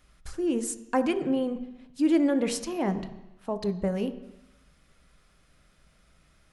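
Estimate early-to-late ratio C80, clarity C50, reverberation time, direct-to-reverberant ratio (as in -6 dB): 14.5 dB, 12.5 dB, 1.0 s, 9.0 dB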